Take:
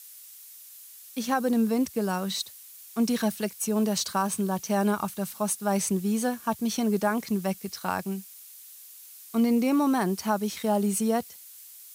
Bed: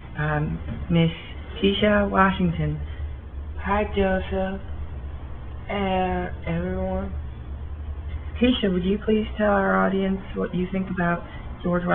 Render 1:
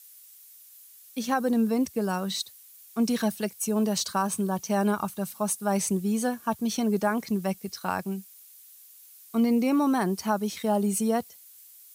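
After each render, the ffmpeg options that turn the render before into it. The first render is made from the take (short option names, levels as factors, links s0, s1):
-af "afftdn=nr=6:nf=-48"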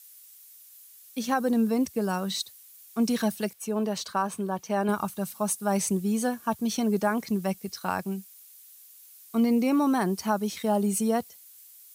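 -filter_complex "[0:a]asettb=1/sr,asplit=3[s0][s1][s2];[s0]atrim=end=3.534[s3];[s1]atrim=start=3.53:end=4.89,asetpts=PTS-STARTPTS,afade=t=in:d=0.004:c=qsin,afade=t=out:st=1.356:d=0.004:c=qsin,bass=f=250:g=-6,treble=f=4000:g=-9[s4];[s2]atrim=start=4.886[s5];[s3][s4]acrossfade=d=0.004:c1=hsin:c2=qsin[s6];[s6][s5]acrossfade=d=0.004:c1=qsin:c2=hsin"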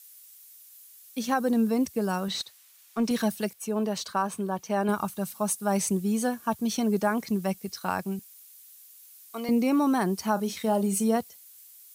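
-filter_complex "[0:a]asettb=1/sr,asplit=3[s0][s1][s2];[s0]atrim=end=2.284[s3];[s1]atrim=start=2.28:end=3.11,asetpts=PTS-STARTPTS,afade=t=in:d=0.004:c=qsin,afade=t=out:st=0.826:d=0.004:c=qsin,asplit=2[s4][s5];[s5]highpass=f=720:p=1,volume=3.98,asoftclip=type=tanh:threshold=0.168[s6];[s4][s6]amix=inputs=2:normalize=0,lowpass=f=2200:p=1,volume=0.501[s7];[s2]atrim=start=3.106[s8];[s3][s7]acrossfade=d=0.004:c1=hsin:c2=qsin[s9];[s9][s8]acrossfade=d=0.004:c1=qsin:c2=hsin,asettb=1/sr,asplit=3[s10][s11][s12];[s10]atrim=end=8.194[s13];[s11]atrim=start=8.19:end=9.49,asetpts=PTS-STARTPTS,afade=t=in:d=0.004:c=qsin,afade=t=out:st=1.296:d=0.004:c=qsin,highpass=540[s14];[s12]atrim=start=9.486[s15];[s13][s14]acrossfade=d=0.004:c1=hsin:c2=qsin[s16];[s16][s15]acrossfade=d=0.004:c1=qsin:c2=hsin,asettb=1/sr,asplit=3[s17][s18][s19];[s17]atrim=end=10.334[s20];[s18]atrim=start=10.33:end=11.17,asetpts=PTS-STARTPTS,afade=t=in:d=0.004:c=qsin,afade=t=out:st=0.836:d=0.004:c=qsin,asplit=2[s21][s22];[s22]adelay=36,volume=0.224[s23];[s21][s23]amix=inputs=2:normalize=0,atrim=end_sample=37044[s24];[s19]atrim=start=11.166[s25];[s20][s24]acrossfade=d=0.004:c1=hsin:c2=qsin[s26];[s26][s25]acrossfade=d=0.004:c1=qsin:c2=hsin"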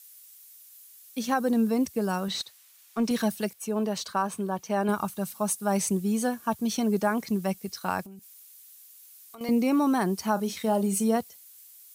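-filter_complex "[0:a]asettb=1/sr,asplit=3[s0][s1][s2];[s0]atrim=end=8.054[s3];[s1]atrim=start=8.05:end=9.41,asetpts=PTS-STARTPTS,afade=t=in:d=0.004:c=qsin,afade=t=out:st=1.356:d=0.004:c=qsin,acompressor=threshold=0.00794:ratio=12:attack=3.2:release=140:knee=1:detection=peak[s4];[s2]atrim=start=9.406[s5];[s3][s4]acrossfade=d=0.004:c1=hsin:c2=qsin[s6];[s6][s5]acrossfade=d=0.004:c1=qsin:c2=hsin"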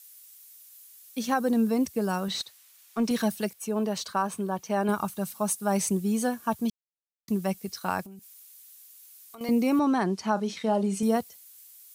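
-filter_complex "[0:a]asettb=1/sr,asplit=3[s0][s1][s2];[s0]atrim=end=9.794[s3];[s1]atrim=start=9.79:end=11.03,asetpts=PTS-STARTPTS,afade=t=in:d=0.004:c=qsin,afade=t=out:st=1.236:d=0.004:c=qsin,highpass=120,lowpass=5700[s4];[s2]atrim=start=11.026[s5];[s3][s4]acrossfade=d=0.004:c1=hsin:c2=qsin[s6];[s6][s5]acrossfade=d=0.004:c1=qsin:c2=hsin,asplit=3[s7][s8][s9];[s7]atrim=end=6.7,asetpts=PTS-STARTPTS,afade=t=out:st=6.696:d=0.004:c=hsin[s10];[s8]atrim=start=6.7:end=7.28,asetpts=PTS-STARTPTS,volume=0[s11];[s9]atrim=start=7.28,asetpts=PTS-STARTPTS,afade=t=in:d=0.004:c=hsin[s12];[s10][s11][s12]concat=n=3:v=0:a=1"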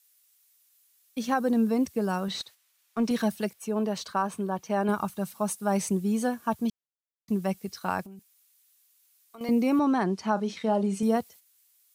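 -af "highshelf=f=4900:g=-6.5,agate=range=0.398:threshold=0.00355:ratio=16:detection=peak"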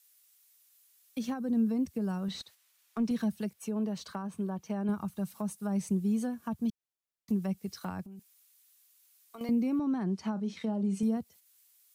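-filter_complex "[0:a]acrossover=split=250[s0][s1];[s1]acompressor=threshold=0.01:ratio=6[s2];[s0][s2]amix=inputs=2:normalize=0"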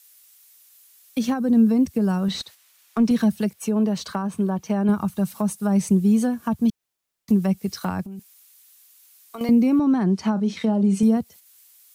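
-af "volume=3.76"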